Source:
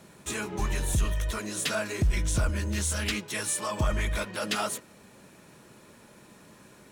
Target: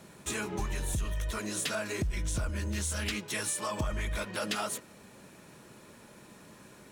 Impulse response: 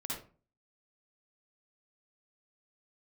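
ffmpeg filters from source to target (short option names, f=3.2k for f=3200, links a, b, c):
-af "acompressor=threshold=-30dB:ratio=4"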